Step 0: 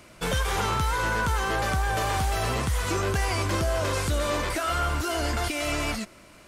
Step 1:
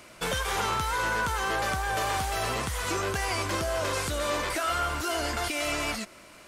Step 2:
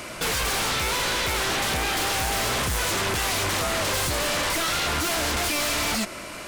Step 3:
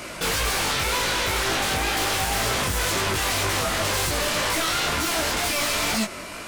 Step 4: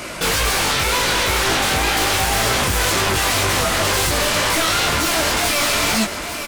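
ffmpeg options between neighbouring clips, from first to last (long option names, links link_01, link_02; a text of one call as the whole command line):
ffmpeg -i in.wav -filter_complex "[0:a]asplit=2[link_01][link_02];[link_02]acompressor=threshold=-32dB:ratio=6,volume=-3dB[link_03];[link_01][link_03]amix=inputs=2:normalize=0,lowshelf=frequency=260:gain=-8.5,volume=-2.5dB" out.wav
ffmpeg -i in.wav -filter_complex "[0:a]asplit=2[link_01][link_02];[link_02]alimiter=level_in=1dB:limit=-24dB:level=0:latency=1,volume=-1dB,volume=-1dB[link_03];[link_01][link_03]amix=inputs=2:normalize=0,aeval=exprs='0.188*sin(PI/2*3.98*val(0)/0.188)':channel_layout=same,volume=-7.5dB" out.wav
ffmpeg -i in.wav -af "flanger=delay=18:depth=4.2:speed=2,volume=4dB" out.wav
ffmpeg -i in.wav -af "aecho=1:1:852:0.299,volume=5.5dB" out.wav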